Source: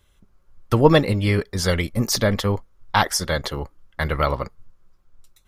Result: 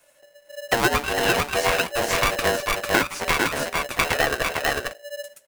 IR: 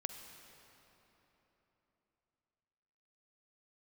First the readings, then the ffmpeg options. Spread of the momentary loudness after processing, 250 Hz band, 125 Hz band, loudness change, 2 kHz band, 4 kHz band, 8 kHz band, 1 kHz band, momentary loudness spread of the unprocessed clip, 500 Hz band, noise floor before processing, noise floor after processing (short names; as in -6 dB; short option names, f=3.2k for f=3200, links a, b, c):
9 LU, -7.0 dB, -12.5 dB, -1.0 dB, +6.0 dB, +1.5 dB, +1.0 dB, +1.0 dB, 14 LU, -2.0 dB, -60 dBFS, -58 dBFS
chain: -filter_complex "[0:a]acrossover=split=370|1500[a][b][c];[c]asoftclip=type=tanh:threshold=-24dB[d];[a][b][d]amix=inputs=3:normalize=0,flanger=delay=5.6:depth=5.8:regen=46:speed=0.94:shape=sinusoidal,equalizer=f=125:t=o:w=1:g=-4,equalizer=f=250:t=o:w=1:g=-6,equalizer=f=500:t=o:w=1:g=-5,equalizer=f=1k:t=o:w=1:g=6,equalizer=f=2k:t=o:w=1:g=10,equalizer=f=4k:t=o:w=1:g=-12,equalizer=f=8k:t=o:w=1:g=9,agate=range=-6dB:threshold=-52dB:ratio=16:detection=peak,highshelf=f=6k:g=9.5,asplit=2[e][f];[f]aecho=0:1:448:0.422[g];[e][g]amix=inputs=2:normalize=0,acrossover=split=4000[h][i];[i]acompressor=threshold=-45dB:ratio=4:attack=1:release=60[j];[h][j]amix=inputs=2:normalize=0,bandreject=f=60:t=h:w=6,bandreject=f=120:t=h:w=6,bandreject=f=180:t=h:w=6,bandreject=f=240:t=h:w=6,acompressor=threshold=-26dB:ratio=6,aeval=exprs='val(0)*sgn(sin(2*PI*580*n/s))':c=same,volume=8.5dB"